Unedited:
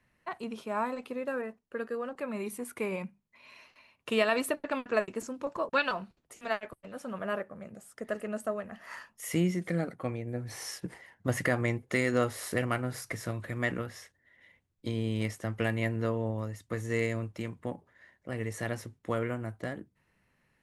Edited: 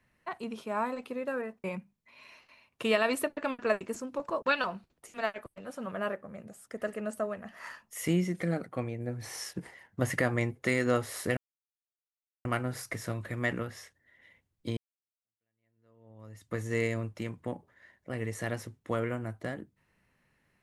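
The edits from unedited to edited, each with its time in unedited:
1.64–2.91 cut
12.64 insert silence 1.08 s
14.96–16.67 fade in exponential

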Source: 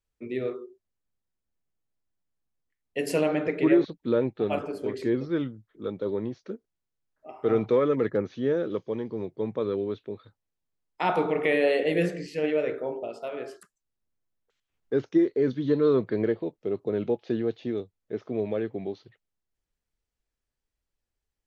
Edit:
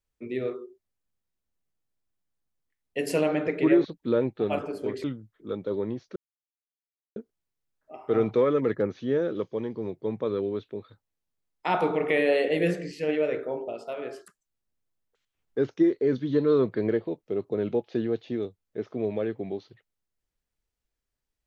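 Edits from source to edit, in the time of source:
5.04–5.39 cut
6.51 insert silence 1.00 s

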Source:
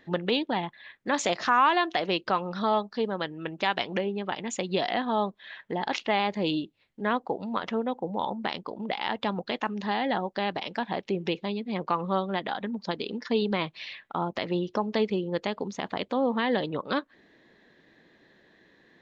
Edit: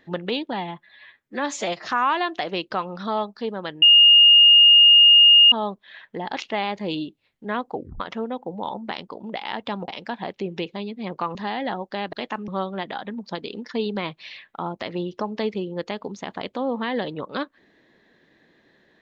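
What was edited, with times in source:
0.53–1.41 stretch 1.5×
3.38–5.08 bleep 2840 Hz -8.5 dBFS
7.3 tape stop 0.26 s
9.44–9.79 swap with 10.57–12.04

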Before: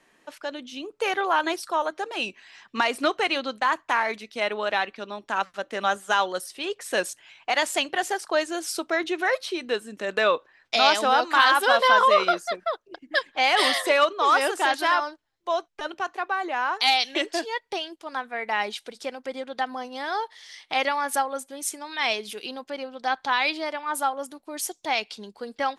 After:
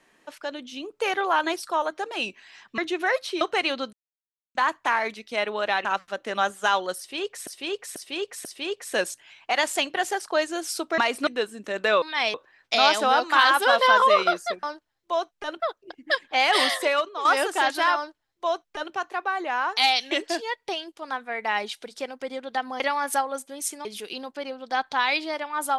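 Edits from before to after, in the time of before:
2.78–3.07 swap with 8.97–9.6
3.59 insert silence 0.62 s
4.89–5.31 cut
6.44–6.93 loop, 4 plays
13.72–14.29 fade out, to -10.5 dB
15–15.97 copy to 12.64
19.84–20.81 cut
21.86–22.18 move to 10.35

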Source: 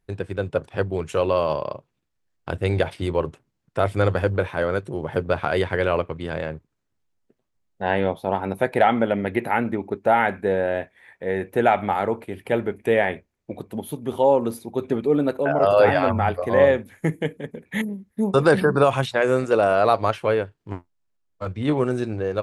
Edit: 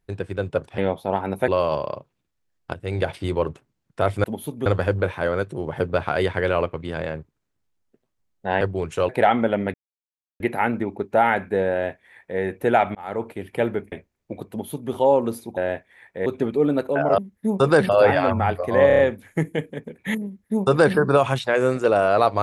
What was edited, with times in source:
0.78–1.26 swap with 7.97–8.67
2.52–2.9 fade in, from -13.5 dB
9.32 insert silence 0.66 s
10.63–11.32 copy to 14.76
11.87–12.2 fade in
12.84–13.11 cut
13.69–14.11 copy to 4.02
16.66 stutter 0.03 s, 5 plays
17.92–18.63 copy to 15.68

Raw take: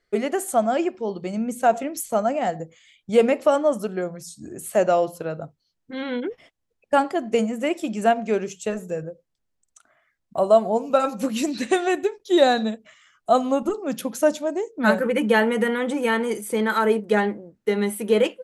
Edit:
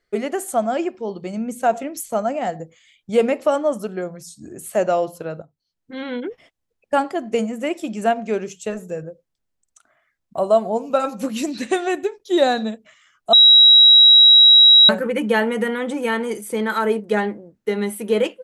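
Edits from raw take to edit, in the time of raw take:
5.42–5.96 fade in, from -15.5 dB
13.33–14.89 bleep 3860 Hz -6 dBFS

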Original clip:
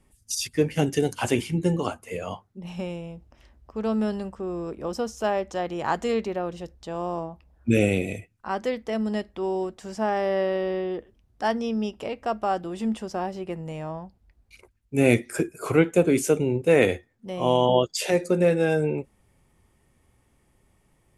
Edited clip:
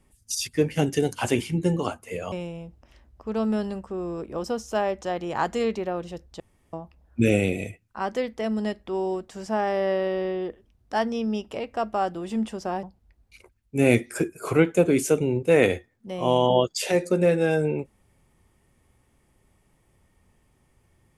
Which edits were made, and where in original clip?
2.32–2.81 cut
6.89–7.22 room tone
13.32–14.02 cut

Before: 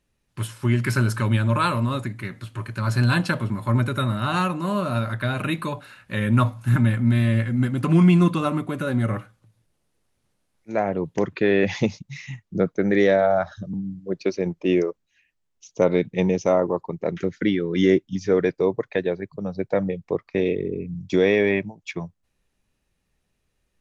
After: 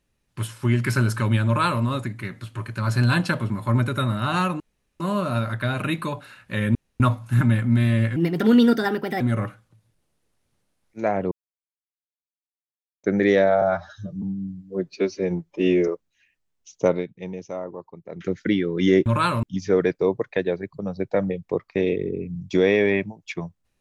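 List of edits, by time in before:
1.46–1.83 copy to 18.02
4.6 insert room tone 0.40 s
6.35 insert room tone 0.25 s
7.51–8.92 speed 135%
11.03–12.75 mute
13.33–14.84 stretch 1.5×
15.82–17.28 dip -12.5 dB, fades 0.20 s

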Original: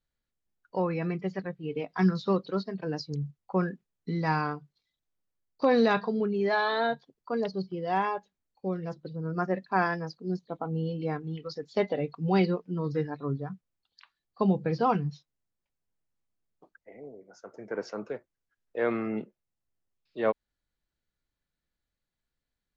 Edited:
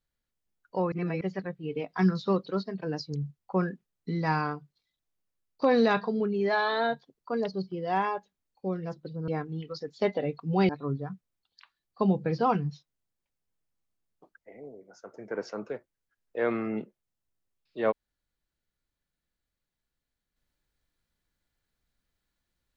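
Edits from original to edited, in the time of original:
0.92–1.21 reverse
9.28–11.03 cut
12.44–13.09 cut

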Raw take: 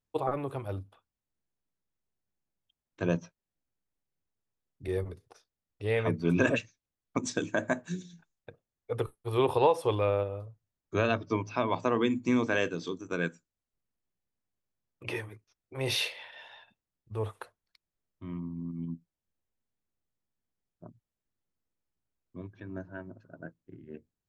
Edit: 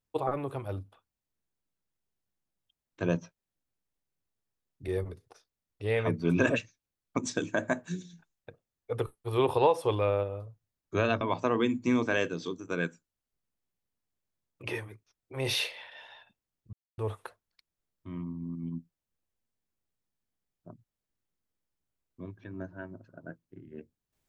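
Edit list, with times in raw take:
11.21–11.62 cut
17.14 insert silence 0.25 s

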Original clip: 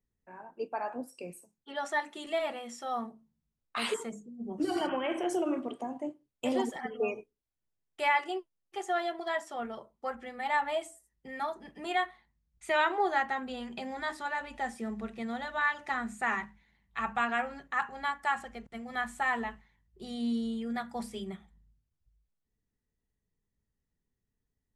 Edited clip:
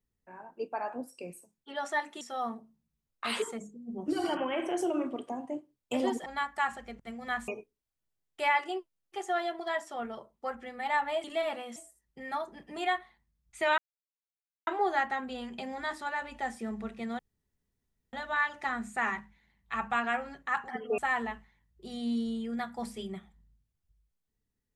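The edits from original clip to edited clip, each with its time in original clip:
2.21–2.73 move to 10.84
6.78–7.08 swap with 17.93–19.15
12.86 insert silence 0.89 s
15.38 insert room tone 0.94 s

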